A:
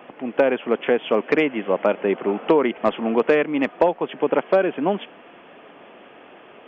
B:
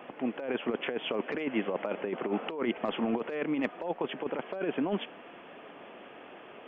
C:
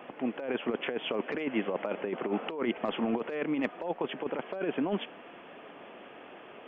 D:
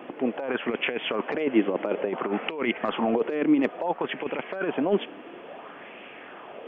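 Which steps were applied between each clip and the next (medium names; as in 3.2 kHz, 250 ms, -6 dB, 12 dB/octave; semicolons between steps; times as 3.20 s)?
peak limiter -11 dBFS, peak gain reduction 4.5 dB; compressor with a negative ratio -23 dBFS, ratio -0.5; trim -6.5 dB
no audible change
sweeping bell 0.58 Hz 300–2500 Hz +9 dB; trim +3 dB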